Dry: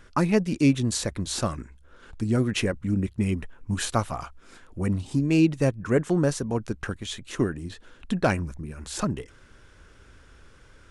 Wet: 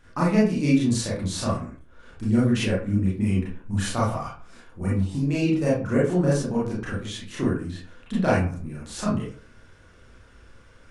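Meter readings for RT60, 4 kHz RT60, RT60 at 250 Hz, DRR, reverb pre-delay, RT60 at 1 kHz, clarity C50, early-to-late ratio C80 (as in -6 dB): 0.45 s, 0.25 s, 0.50 s, -7.5 dB, 28 ms, 0.45 s, 2.5 dB, 9.0 dB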